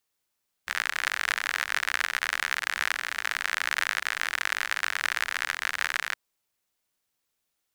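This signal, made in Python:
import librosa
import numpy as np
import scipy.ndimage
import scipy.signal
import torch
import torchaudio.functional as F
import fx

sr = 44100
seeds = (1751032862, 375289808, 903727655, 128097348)

y = fx.rain(sr, seeds[0], length_s=5.47, drops_per_s=62.0, hz=1700.0, bed_db=-30.0)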